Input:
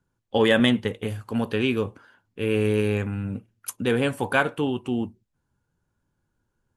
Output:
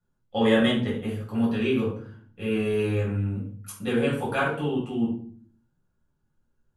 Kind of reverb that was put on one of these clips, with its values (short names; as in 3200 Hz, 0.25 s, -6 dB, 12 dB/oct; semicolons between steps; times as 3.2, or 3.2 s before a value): shoebox room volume 520 m³, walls furnished, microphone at 6.6 m; gain -12.5 dB